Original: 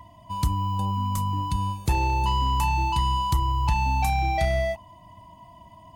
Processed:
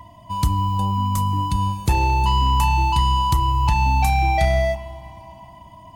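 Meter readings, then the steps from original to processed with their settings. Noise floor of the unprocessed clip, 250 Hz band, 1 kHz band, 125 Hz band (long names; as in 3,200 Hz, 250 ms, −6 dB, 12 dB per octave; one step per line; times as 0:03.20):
−50 dBFS, +5.0 dB, +5.0 dB, +5.5 dB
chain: dense smooth reverb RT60 3.4 s, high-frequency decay 0.75×, DRR 14.5 dB
level +4.5 dB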